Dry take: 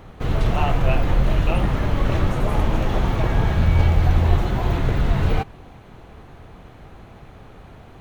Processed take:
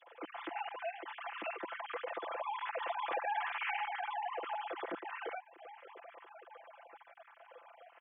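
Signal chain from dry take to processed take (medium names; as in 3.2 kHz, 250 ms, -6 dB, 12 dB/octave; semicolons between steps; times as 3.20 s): formants replaced by sine waves; Doppler pass-by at 3.47 s, 8 m/s, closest 2.9 m; high-pass 240 Hz 24 dB/octave; comb 5.9 ms, depth 95%; compression 2.5:1, threshold -44 dBFS, peak gain reduction 22 dB; trim -1 dB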